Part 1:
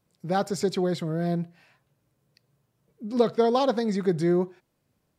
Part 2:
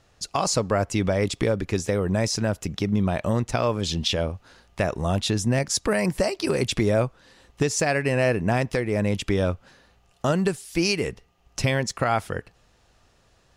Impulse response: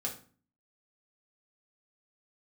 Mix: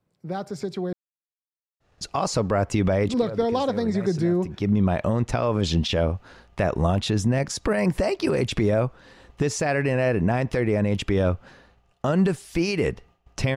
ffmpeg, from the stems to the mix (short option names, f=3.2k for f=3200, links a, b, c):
-filter_complex "[0:a]acrossover=split=150|3000[a][b][c];[b]acompressor=threshold=-29dB:ratio=2.5[d];[a][d][c]amix=inputs=3:normalize=0,volume=-0.5dB,asplit=3[e][f][g];[e]atrim=end=0.93,asetpts=PTS-STARTPTS,afade=t=out:st=0.926:d=0.004:c=hsin[h];[f]atrim=start=0.93:end=3.09,asetpts=PTS-STARTPTS,volume=0[i];[g]atrim=start=3.09,asetpts=PTS-STARTPTS,afade=t=in:d=0.004:c=hsin[j];[h][i][j]concat=n=3:v=0:a=1,asplit=2[k][l];[1:a]agate=range=-33dB:threshold=-53dB:ratio=3:detection=peak,alimiter=limit=-18dB:level=0:latency=1:release=55,adelay=1800,volume=0dB[m];[l]apad=whole_len=677533[n];[m][n]sidechaincompress=threshold=-41dB:ratio=6:attack=26:release=230[o];[k][o]amix=inputs=2:normalize=0,highshelf=f=3.9k:g=-11.5,dynaudnorm=f=190:g=13:m=6dB"